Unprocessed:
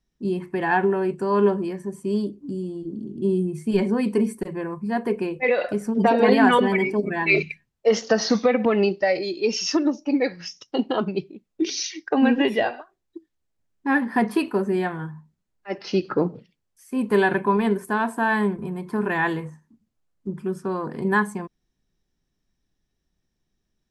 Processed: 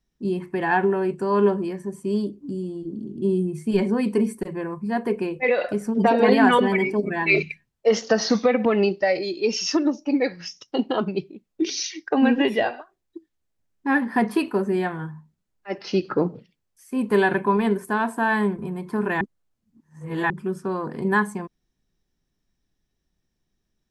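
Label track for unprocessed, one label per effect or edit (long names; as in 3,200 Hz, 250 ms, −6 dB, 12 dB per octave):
19.210000	20.300000	reverse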